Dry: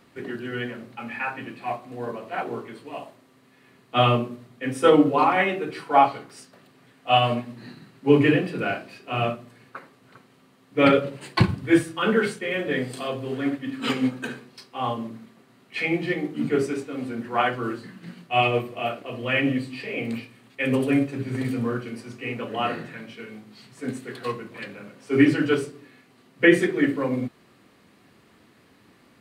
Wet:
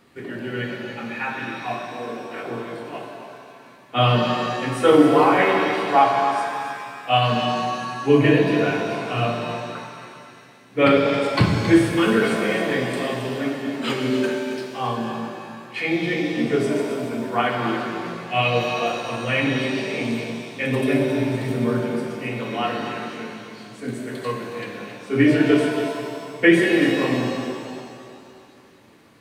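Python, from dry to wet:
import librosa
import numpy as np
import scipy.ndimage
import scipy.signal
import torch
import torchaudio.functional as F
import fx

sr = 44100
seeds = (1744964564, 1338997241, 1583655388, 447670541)

p1 = fx.fixed_phaser(x, sr, hz=340.0, stages=4, at=(1.82, 2.44))
p2 = p1 + fx.echo_single(p1, sr, ms=273, db=-10.0, dry=0)
y = fx.rev_shimmer(p2, sr, seeds[0], rt60_s=2.3, semitones=7, shimmer_db=-8, drr_db=1.5)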